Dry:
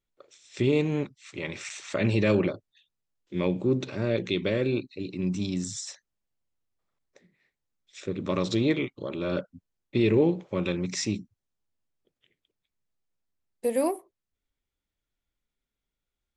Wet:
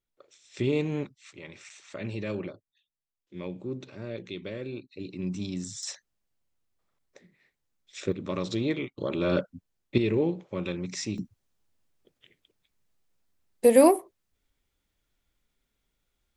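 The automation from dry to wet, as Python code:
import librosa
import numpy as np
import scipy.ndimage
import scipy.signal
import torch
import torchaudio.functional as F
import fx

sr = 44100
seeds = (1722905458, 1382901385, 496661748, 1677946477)

y = fx.gain(x, sr, db=fx.steps((0.0, -3.0), (1.33, -10.5), (4.92, -4.0), (5.83, 3.5), (8.12, -4.0), (8.98, 3.5), (9.98, -4.0), (11.18, 8.5)))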